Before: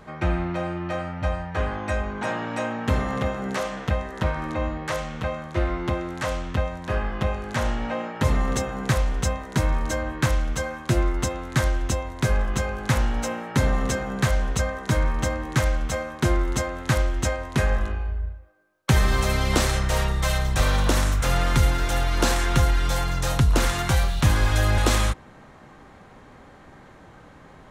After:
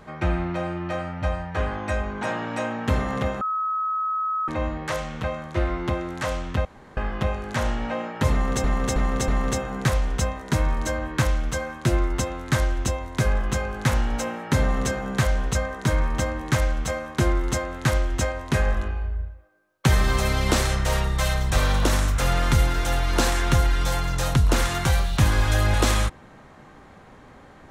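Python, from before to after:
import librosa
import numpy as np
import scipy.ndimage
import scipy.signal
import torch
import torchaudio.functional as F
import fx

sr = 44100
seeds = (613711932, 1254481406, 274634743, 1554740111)

y = fx.edit(x, sr, fx.bleep(start_s=3.41, length_s=1.07, hz=1280.0, db=-22.5),
    fx.room_tone_fill(start_s=6.65, length_s=0.32),
    fx.repeat(start_s=8.32, length_s=0.32, count=4), tone=tone)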